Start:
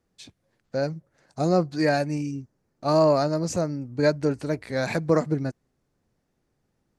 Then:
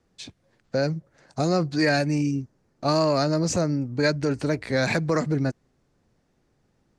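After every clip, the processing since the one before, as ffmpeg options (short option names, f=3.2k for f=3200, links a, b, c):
-filter_complex "[0:a]lowpass=8.3k,acrossover=split=540|1300[a][b][c];[a]alimiter=limit=-23dB:level=0:latency=1[d];[b]acompressor=threshold=-37dB:ratio=6[e];[d][e][c]amix=inputs=3:normalize=0,volume=6dB"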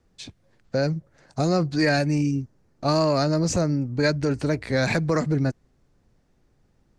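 -af "lowshelf=f=71:g=11.5"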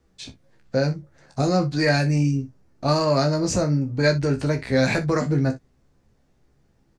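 -filter_complex "[0:a]asplit=2[a][b];[b]adelay=15,volume=-6dB[c];[a][c]amix=inputs=2:normalize=0,asplit=2[d][e];[e]aecho=0:1:27|61:0.316|0.158[f];[d][f]amix=inputs=2:normalize=0"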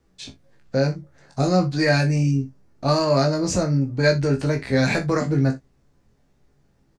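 -filter_complex "[0:a]asplit=2[a][b];[b]adelay=22,volume=-8dB[c];[a][c]amix=inputs=2:normalize=0"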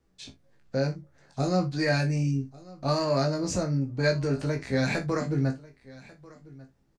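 -af "aecho=1:1:1143:0.0841,volume=-6.5dB"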